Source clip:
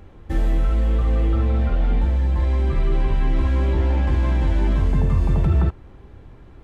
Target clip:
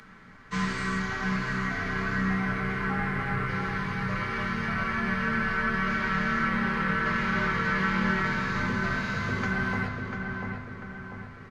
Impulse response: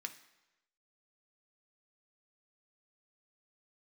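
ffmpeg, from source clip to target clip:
-filter_complex "[0:a]highshelf=f=1700:t=q:w=1.5:g=10.5,acrossover=split=110|270|740[s0][s1][s2][s3];[s0]asoftclip=type=tanh:threshold=0.0447[s4];[s1]alimiter=level_in=1.41:limit=0.0631:level=0:latency=1,volume=0.708[s5];[s4][s5][s2][s3]amix=inputs=4:normalize=0,asplit=2[s6][s7];[s7]adelay=400,lowpass=f=3400:p=1,volume=0.631,asplit=2[s8][s9];[s9]adelay=400,lowpass=f=3400:p=1,volume=0.52,asplit=2[s10][s11];[s11]adelay=400,lowpass=f=3400:p=1,volume=0.52,asplit=2[s12][s13];[s13]adelay=400,lowpass=f=3400:p=1,volume=0.52,asplit=2[s14][s15];[s15]adelay=400,lowpass=f=3400:p=1,volume=0.52,asplit=2[s16][s17];[s17]adelay=400,lowpass=f=3400:p=1,volume=0.52,asplit=2[s18][s19];[s19]adelay=400,lowpass=f=3400:p=1,volume=0.52[s20];[s6][s8][s10][s12][s14][s16][s18][s20]amix=inputs=8:normalize=0[s21];[1:a]atrim=start_sample=2205,asetrate=66150,aresample=44100[s22];[s21][s22]afir=irnorm=-1:irlink=0,asetrate=25442,aresample=44100,volume=2.11"

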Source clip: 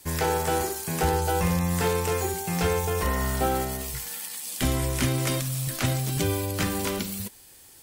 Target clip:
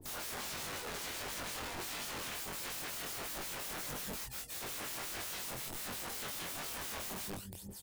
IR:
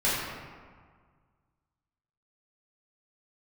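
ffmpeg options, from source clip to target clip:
-filter_complex "[0:a]asettb=1/sr,asplit=3[s0][s1][s2];[s0]atrim=end=5.294[s3];[s1]atrim=start=5.29:end=5.76,asetpts=PTS-STARTPTS,afade=t=in:d=0.004:c=qsin,afade=t=out:st=0.466:d=0.004:c=qsin,asubboost=boost=7:cutoff=100[s4];[s2]atrim=start=5.756[s5];[s3][s4]acrossfade=d=0.004:c1=hsin:c2=qsin[s6];[s6][s5]acrossfade=d=0.004:c1=qsin:c2=hsin,asplit=2[s7][s8];[s8]acompressor=threshold=0.01:ratio=6,volume=1.06[s9];[s7][s9]amix=inputs=2:normalize=0,asplit=2[s10][s11];[s11]adelay=163,lowpass=f=1700:p=1,volume=0.668,asplit=2[s12][s13];[s13]adelay=163,lowpass=f=1700:p=1,volume=0.35,asplit=2[s14][s15];[s15]adelay=163,lowpass=f=1700:p=1,volume=0.35,asplit=2[s16][s17];[s17]adelay=163,lowpass=f=1700:p=1,volume=0.35,asplit=2[s18][s19];[s19]adelay=163,lowpass=f=1700:p=1,volume=0.35[s20];[s10][s12][s14][s16][s18][s20]amix=inputs=6:normalize=0,asettb=1/sr,asplit=3[s21][s22][s23];[s21]atrim=end=0.374[s24];[s22]atrim=start=0.37:end=2.3,asetpts=PTS-STARTPTS,afade=t=in:d=0.004:c=qsin,afade=t=out:st=1.926:d=0.004:c=qsin,adynamicsmooth=sensitivity=7.5:basefreq=1100[s25];[s23]atrim=start=2.296[s26];[s24][s25]acrossfade=d=0.004:c1=hsin:c2=qsin[s27];[s27][s26]acrossfade=d=0.004:c1=qsin:c2=hsin,aphaser=in_gain=1:out_gain=1:delay=4.8:decay=0.75:speed=0.26:type=triangular,acrossover=split=570[s28][s29];[s28]aeval=exprs='val(0)*(1-1/2+1/2*cos(2*PI*5.6*n/s))':c=same[s30];[s29]aeval=exprs='val(0)*(1-1/2-1/2*cos(2*PI*5.6*n/s))':c=same[s31];[s30][s31]amix=inputs=2:normalize=0,aeval=exprs='(mod(29.9*val(0)+1,2)-1)/29.9':c=same,flanger=delay=20:depth=4.4:speed=1.5,volume=0.596"

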